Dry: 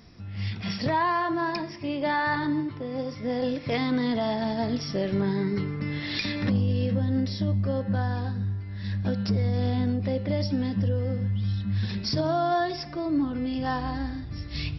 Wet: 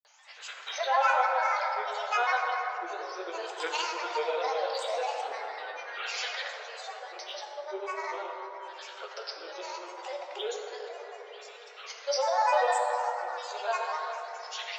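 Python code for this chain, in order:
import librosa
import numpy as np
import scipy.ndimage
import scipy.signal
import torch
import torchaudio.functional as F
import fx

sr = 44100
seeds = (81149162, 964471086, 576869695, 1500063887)

y = scipy.signal.sosfilt(scipy.signal.butter(12, 560.0, 'highpass', fs=sr, output='sos'), x)
y = fx.granulator(y, sr, seeds[0], grain_ms=100.0, per_s=20.0, spray_ms=100.0, spread_st=7)
y = fx.rev_plate(y, sr, seeds[1], rt60_s=3.8, hf_ratio=0.3, predelay_ms=0, drr_db=1.5)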